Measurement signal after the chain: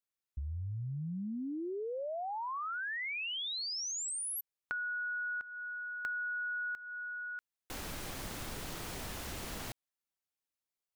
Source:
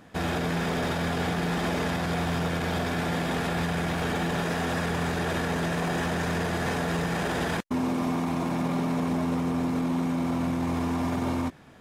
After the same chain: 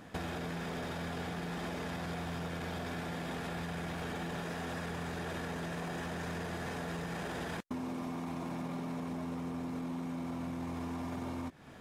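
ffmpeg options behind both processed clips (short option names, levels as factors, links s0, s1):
-af "acompressor=threshold=0.0141:ratio=6"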